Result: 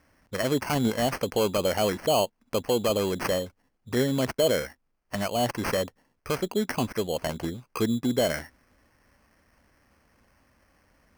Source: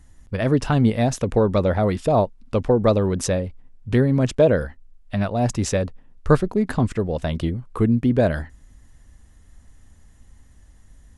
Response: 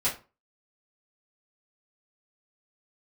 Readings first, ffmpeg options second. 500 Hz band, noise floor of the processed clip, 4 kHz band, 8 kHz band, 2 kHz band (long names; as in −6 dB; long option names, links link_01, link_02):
−5.0 dB, −73 dBFS, +5.0 dB, −1.0 dB, −2.0 dB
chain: -af "highpass=frequency=480:poles=1,alimiter=limit=-14.5dB:level=0:latency=1:release=25,acrusher=samples=12:mix=1:aa=0.000001"